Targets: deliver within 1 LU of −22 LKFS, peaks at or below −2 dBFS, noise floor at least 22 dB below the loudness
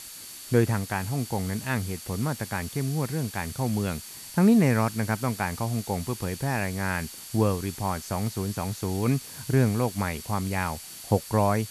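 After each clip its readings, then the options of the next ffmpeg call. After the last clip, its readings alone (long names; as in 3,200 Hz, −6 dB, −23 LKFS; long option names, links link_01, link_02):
interfering tone 4,500 Hz; level of the tone −50 dBFS; background noise floor −42 dBFS; target noise floor −50 dBFS; integrated loudness −27.5 LKFS; sample peak −8.5 dBFS; target loudness −22.0 LKFS
→ -af "bandreject=frequency=4500:width=30"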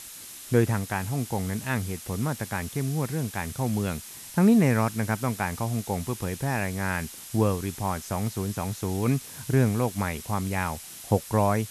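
interfering tone none found; background noise floor −43 dBFS; target noise floor −50 dBFS
→ -af "afftdn=noise_reduction=7:noise_floor=-43"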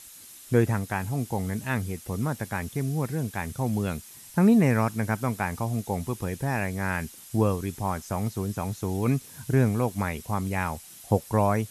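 background noise floor −47 dBFS; target noise floor −50 dBFS
→ -af "afftdn=noise_reduction=6:noise_floor=-47"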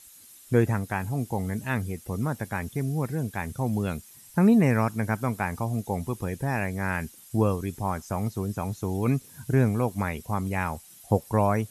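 background noise floor −51 dBFS; integrated loudness −27.5 LKFS; sample peak −9.0 dBFS; target loudness −22.0 LKFS
→ -af "volume=5.5dB"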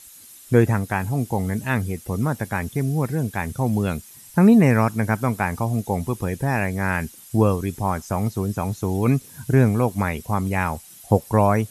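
integrated loudness −22.0 LKFS; sample peak −3.5 dBFS; background noise floor −45 dBFS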